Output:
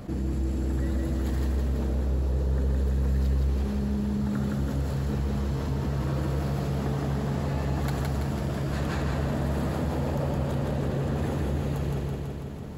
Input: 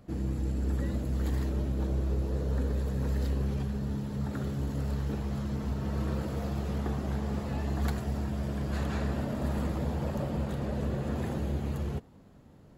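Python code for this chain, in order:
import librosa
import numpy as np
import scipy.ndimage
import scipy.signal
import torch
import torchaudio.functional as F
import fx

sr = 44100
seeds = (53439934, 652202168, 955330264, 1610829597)

y = fx.echo_feedback(x, sr, ms=165, feedback_pct=54, wet_db=-3)
y = fx.env_flatten(y, sr, amount_pct=50)
y = y * 10.0 ** (-2.0 / 20.0)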